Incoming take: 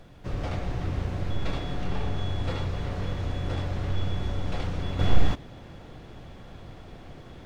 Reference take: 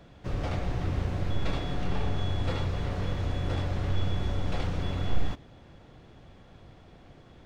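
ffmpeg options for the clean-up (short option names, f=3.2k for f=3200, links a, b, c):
-af "agate=range=-21dB:threshold=-37dB,asetnsamples=n=441:p=0,asendcmd='4.99 volume volume -7dB',volume=0dB"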